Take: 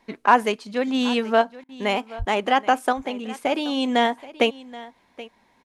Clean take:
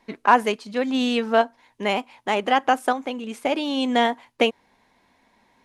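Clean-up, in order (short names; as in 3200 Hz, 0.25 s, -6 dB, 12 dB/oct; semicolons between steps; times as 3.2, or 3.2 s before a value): 2.18–2.3 HPF 140 Hz 24 dB/oct; interpolate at 1.64, 48 ms; inverse comb 0.777 s -18.5 dB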